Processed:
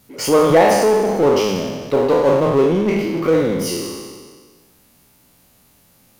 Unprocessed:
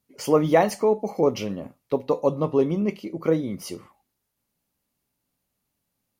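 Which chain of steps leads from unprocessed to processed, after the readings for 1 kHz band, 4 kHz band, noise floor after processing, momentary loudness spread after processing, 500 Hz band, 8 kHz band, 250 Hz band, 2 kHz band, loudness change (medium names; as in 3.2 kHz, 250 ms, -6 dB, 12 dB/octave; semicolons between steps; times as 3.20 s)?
+9.0 dB, +12.5 dB, -54 dBFS, 11 LU, +8.0 dB, +12.0 dB, +6.5 dB, +10.5 dB, +7.5 dB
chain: spectral sustain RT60 1.15 s; de-hum 51.44 Hz, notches 5; power-law waveshaper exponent 0.7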